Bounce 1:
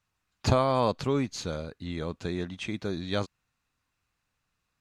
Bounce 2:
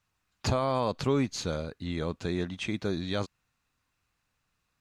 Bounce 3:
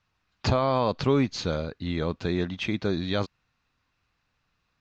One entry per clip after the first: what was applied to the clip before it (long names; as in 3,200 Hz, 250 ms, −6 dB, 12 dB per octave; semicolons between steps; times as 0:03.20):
brickwall limiter −19 dBFS, peak gain reduction 8 dB; level +1.5 dB
low-pass filter 5,500 Hz 24 dB per octave; level +4 dB